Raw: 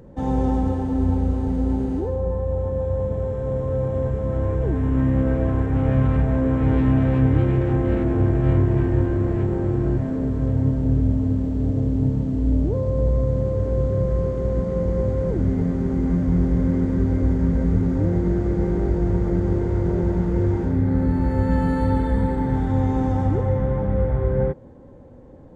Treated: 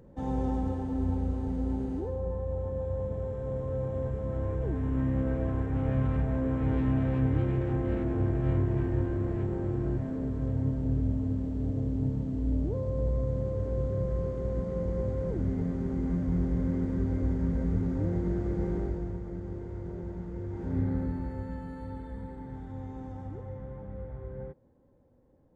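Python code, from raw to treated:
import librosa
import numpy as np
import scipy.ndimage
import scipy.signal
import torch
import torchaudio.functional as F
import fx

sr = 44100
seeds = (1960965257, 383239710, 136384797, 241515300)

y = fx.gain(x, sr, db=fx.line((18.77, -9.0), (19.22, -17.0), (20.49, -17.0), (20.79, -8.0), (21.64, -19.5)))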